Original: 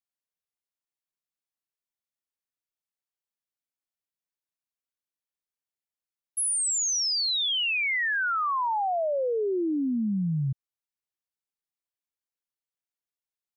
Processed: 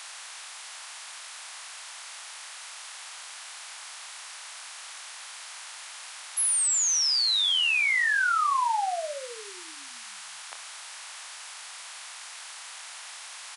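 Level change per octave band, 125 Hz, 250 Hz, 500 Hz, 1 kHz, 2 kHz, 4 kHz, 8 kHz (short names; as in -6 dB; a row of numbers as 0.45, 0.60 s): under -40 dB, under -30 dB, -10.5 dB, +1.0 dB, +2.5 dB, +2.5 dB, +2.5 dB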